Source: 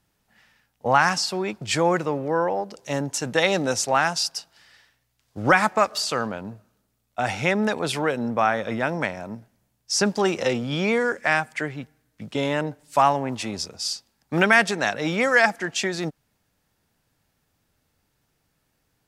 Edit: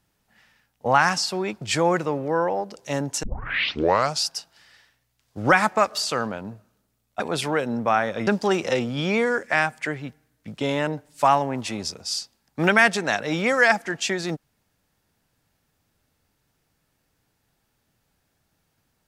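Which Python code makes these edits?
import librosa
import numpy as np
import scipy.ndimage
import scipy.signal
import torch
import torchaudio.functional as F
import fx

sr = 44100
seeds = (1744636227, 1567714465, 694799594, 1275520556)

y = fx.edit(x, sr, fx.tape_start(start_s=3.23, length_s=1.0),
    fx.cut(start_s=7.2, length_s=0.51),
    fx.cut(start_s=8.78, length_s=1.23), tone=tone)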